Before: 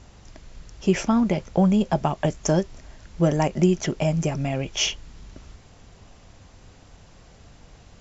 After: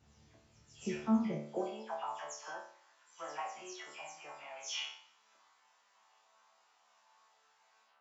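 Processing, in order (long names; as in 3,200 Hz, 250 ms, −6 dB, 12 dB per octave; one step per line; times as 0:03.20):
every frequency bin delayed by itself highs early, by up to 182 ms
high-pass filter sweep 100 Hz → 1,000 Hz, 0:01.21–0:01.88
resonators tuned to a chord D2 fifth, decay 0.56 s
level −2 dB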